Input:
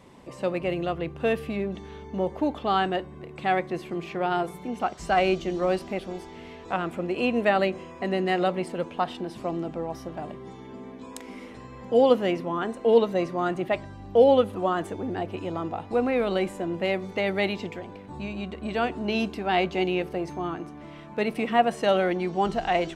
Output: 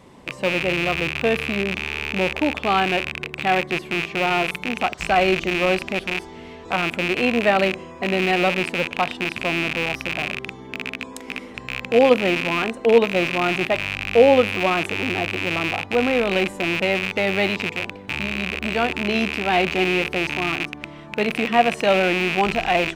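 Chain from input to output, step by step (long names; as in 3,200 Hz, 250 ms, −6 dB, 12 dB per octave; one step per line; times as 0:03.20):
loose part that buzzes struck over −41 dBFS, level −16 dBFS
level +4 dB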